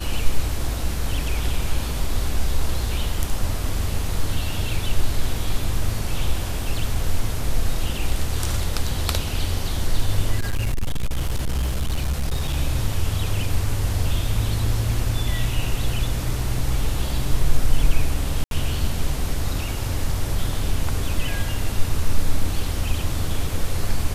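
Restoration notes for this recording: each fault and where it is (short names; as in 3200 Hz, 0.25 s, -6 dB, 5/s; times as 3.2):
10.38–12.57 clipped -18 dBFS
18.44–18.51 gap 72 ms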